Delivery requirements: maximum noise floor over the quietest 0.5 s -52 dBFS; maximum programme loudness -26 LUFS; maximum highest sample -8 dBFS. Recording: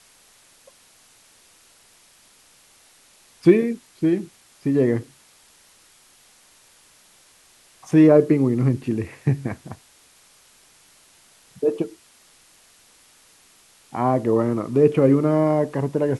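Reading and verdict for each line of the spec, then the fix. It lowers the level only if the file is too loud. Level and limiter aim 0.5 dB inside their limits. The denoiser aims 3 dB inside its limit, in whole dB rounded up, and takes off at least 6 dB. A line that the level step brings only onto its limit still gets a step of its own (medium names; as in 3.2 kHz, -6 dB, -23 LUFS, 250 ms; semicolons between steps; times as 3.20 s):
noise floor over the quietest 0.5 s -55 dBFS: pass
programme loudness -20.0 LUFS: fail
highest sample -2.5 dBFS: fail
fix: trim -6.5 dB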